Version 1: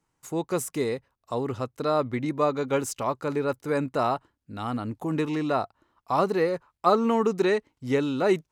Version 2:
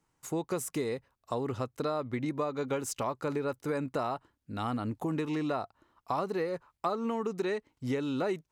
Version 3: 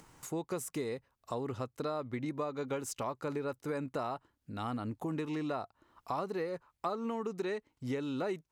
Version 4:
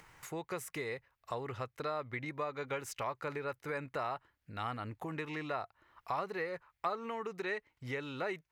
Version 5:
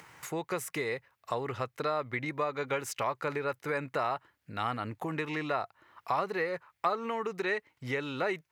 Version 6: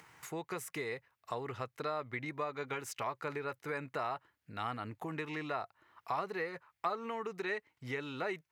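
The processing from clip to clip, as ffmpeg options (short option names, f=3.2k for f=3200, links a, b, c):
-af "acompressor=threshold=-29dB:ratio=6"
-af "acompressor=mode=upward:threshold=-38dB:ratio=2.5,volume=-4dB"
-af "equalizer=f=250:t=o:w=1:g=-9,equalizer=f=2k:t=o:w=1:g=9,equalizer=f=8k:t=o:w=1:g=-5,volume=-1dB"
-af "highpass=110,volume=6dB"
-af "bandreject=f=550:w=12,volume=-5.5dB"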